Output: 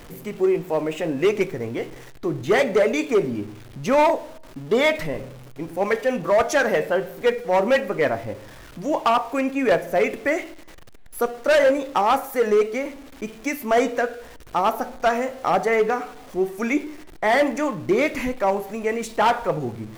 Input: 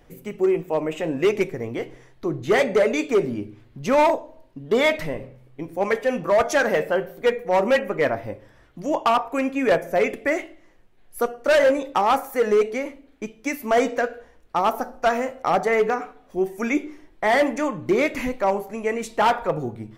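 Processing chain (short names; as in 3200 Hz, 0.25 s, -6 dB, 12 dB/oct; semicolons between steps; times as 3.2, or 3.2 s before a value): zero-crossing step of -39 dBFS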